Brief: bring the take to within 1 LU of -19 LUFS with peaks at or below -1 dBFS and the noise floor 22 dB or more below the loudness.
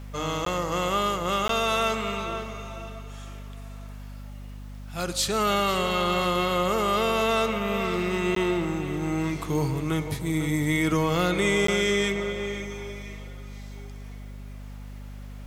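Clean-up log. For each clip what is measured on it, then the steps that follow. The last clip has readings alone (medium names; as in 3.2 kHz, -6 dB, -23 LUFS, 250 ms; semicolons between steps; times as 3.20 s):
dropouts 4; longest dropout 13 ms; hum 50 Hz; highest harmonic 250 Hz; hum level -36 dBFS; loudness -25.5 LUFS; peak level -12.0 dBFS; loudness target -19.0 LUFS
-> interpolate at 0.45/1.48/8.35/11.67 s, 13 ms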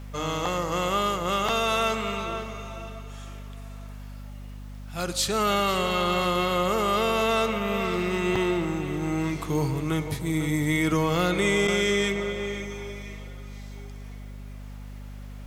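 dropouts 0; hum 50 Hz; highest harmonic 250 Hz; hum level -36 dBFS
-> de-hum 50 Hz, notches 5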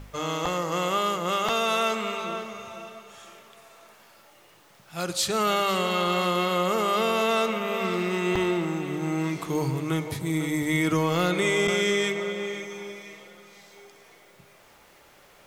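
hum not found; loudness -25.5 LUFS; peak level -12.0 dBFS; loudness target -19.0 LUFS
-> trim +6.5 dB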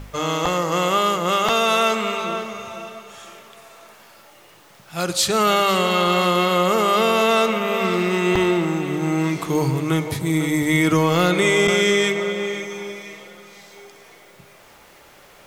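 loudness -19.0 LUFS; peak level -5.5 dBFS; noise floor -49 dBFS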